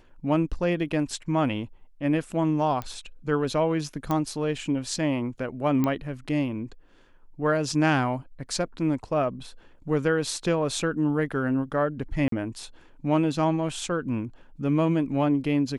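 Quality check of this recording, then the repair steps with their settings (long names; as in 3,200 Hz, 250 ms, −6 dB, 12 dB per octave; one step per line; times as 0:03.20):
0:02.82: click −19 dBFS
0:04.11: click −14 dBFS
0:05.84: click −13 dBFS
0:12.28–0:12.32: drop-out 43 ms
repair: click removal
repair the gap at 0:12.28, 43 ms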